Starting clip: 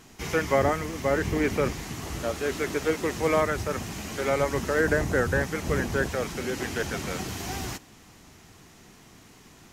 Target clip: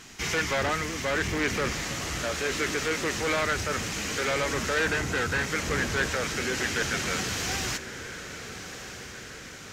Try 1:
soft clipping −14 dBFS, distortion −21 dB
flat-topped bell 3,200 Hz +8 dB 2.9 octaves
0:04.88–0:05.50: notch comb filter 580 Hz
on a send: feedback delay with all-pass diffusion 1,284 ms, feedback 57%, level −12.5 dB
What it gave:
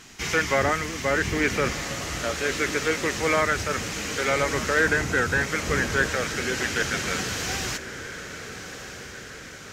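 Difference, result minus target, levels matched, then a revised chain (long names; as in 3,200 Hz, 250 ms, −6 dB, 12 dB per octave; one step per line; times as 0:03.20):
soft clipping: distortion −13 dB
soft clipping −25 dBFS, distortion −9 dB
flat-topped bell 3,200 Hz +8 dB 2.9 octaves
0:04.88–0:05.50: notch comb filter 580 Hz
on a send: feedback delay with all-pass diffusion 1,284 ms, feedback 57%, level −12.5 dB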